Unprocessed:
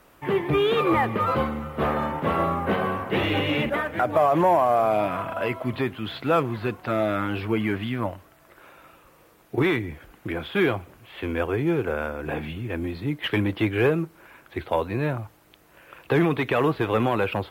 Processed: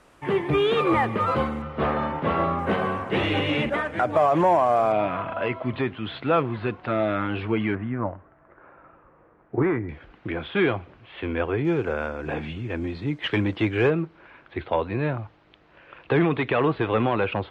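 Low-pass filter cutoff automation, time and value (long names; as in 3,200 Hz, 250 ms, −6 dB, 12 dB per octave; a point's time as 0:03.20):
low-pass filter 24 dB per octave
9,900 Hz
from 0:01.62 5,000 Hz
from 0:02.59 9,100 Hz
from 0:04.92 3,900 Hz
from 0:07.75 1,700 Hz
from 0:09.89 4,000 Hz
from 0:11.65 6,900 Hz
from 0:13.90 4,000 Hz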